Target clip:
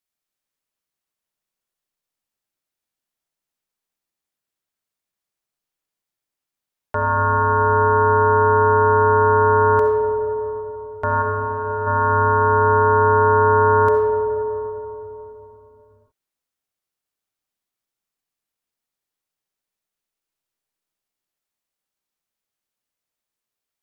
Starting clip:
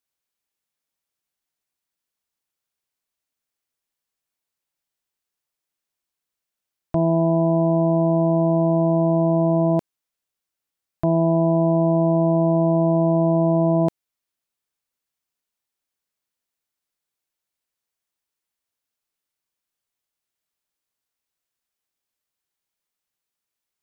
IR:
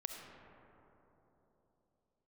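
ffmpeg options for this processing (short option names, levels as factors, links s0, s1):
-filter_complex "[0:a]aeval=exprs='val(0)*sin(2*PI*760*n/s)':c=same,asplit=3[s0][s1][s2];[s0]afade=t=out:st=11.21:d=0.02[s3];[s1]agate=range=0.0224:threshold=0.251:ratio=3:detection=peak,afade=t=in:st=11.21:d=0.02,afade=t=out:st=11.86:d=0.02[s4];[s2]afade=t=in:st=11.86:d=0.02[s5];[s3][s4][s5]amix=inputs=3:normalize=0[s6];[1:a]atrim=start_sample=2205,asetrate=43659,aresample=44100[s7];[s6][s7]afir=irnorm=-1:irlink=0,volume=1.68"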